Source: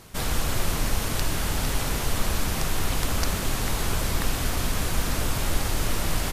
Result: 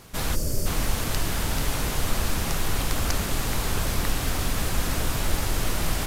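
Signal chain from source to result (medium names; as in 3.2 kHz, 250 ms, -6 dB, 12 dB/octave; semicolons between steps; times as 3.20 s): time-frequency box 0.37–0.69 s, 630–4200 Hz -15 dB; speed mistake 24 fps film run at 25 fps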